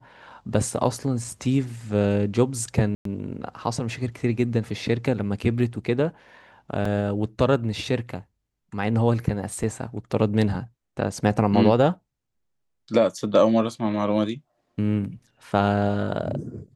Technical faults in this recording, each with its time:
2.95–3.05 s: dropout 103 ms
6.85 s: dropout 3.8 ms
9.63 s: dropout 4.8 ms

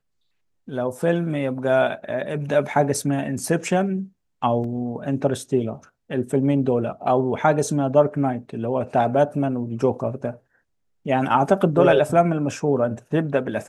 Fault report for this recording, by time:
4.64 s: dropout 2.9 ms

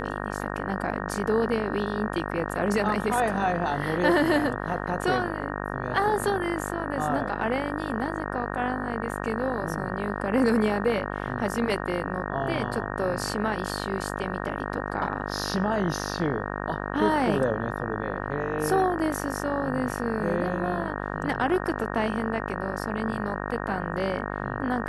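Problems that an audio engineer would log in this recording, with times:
buzz 50 Hz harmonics 37 -32 dBFS

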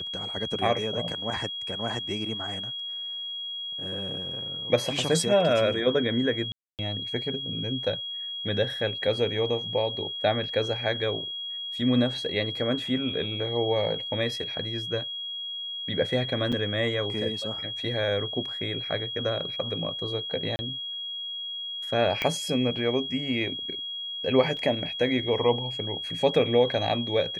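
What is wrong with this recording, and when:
whine 3.3 kHz -32 dBFS
6.52–6.79 s: dropout 268 ms
16.52–16.53 s: dropout 5.9 ms
20.56–20.59 s: dropout 30 ms
22.22 s: pop -13 dBFS
24.57 s: dropout 3.8 ms

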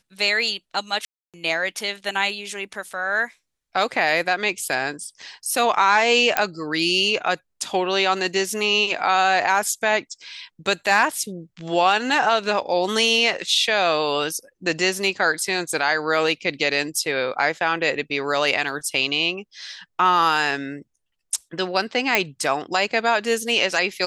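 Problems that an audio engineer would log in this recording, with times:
1.05–1.34 s: dropout 287 ms
6.37 s: pop -1 dBFS
22.15 s: pop -2 dBFS

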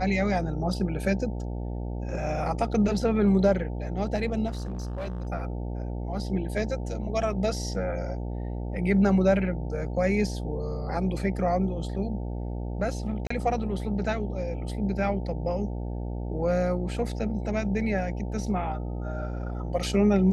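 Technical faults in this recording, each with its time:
buzz 60 Hz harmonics 15 -32 dBFS
4.47–5.27 s: clipped -29 dBFS
13.27–13.30 s: dropout 34 ms

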